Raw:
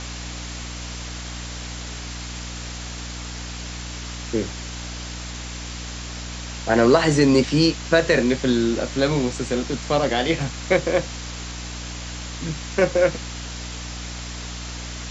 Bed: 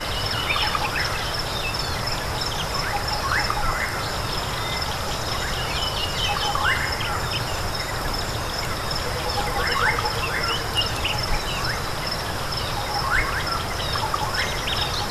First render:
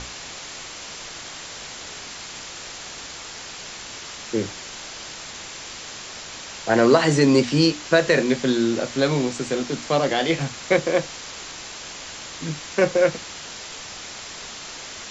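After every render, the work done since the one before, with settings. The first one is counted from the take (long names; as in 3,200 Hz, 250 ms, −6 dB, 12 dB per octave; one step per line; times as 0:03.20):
mains-hum notches 60/120/180/240/300 Hz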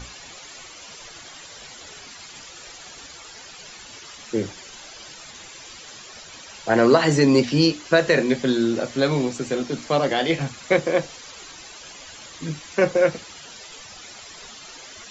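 broadband denoise 12 dB, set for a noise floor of −37 dBFS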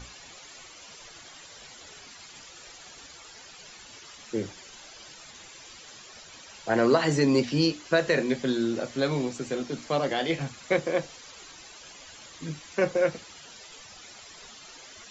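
level −6 dB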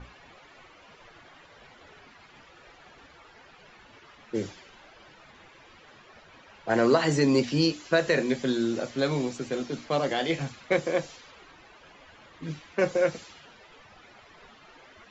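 low-pass that shuts in the quiet parts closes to 1,700 Hz, open at −23.5 dBFS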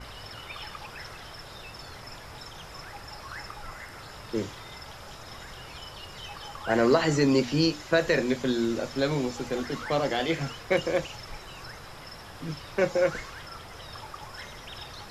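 mix in bed −18 dB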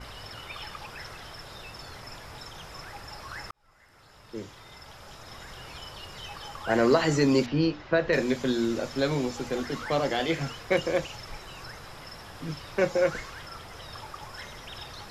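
0:03.51–0:05.69: fade in
0:07.46–0:08.13: high-frequency loss of the air 260 metres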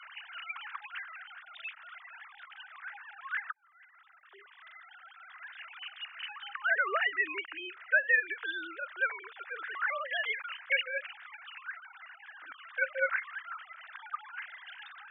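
three sine waves on the formant tracks
high-pass with resonance 1,500 Hz, resonance Q 2.6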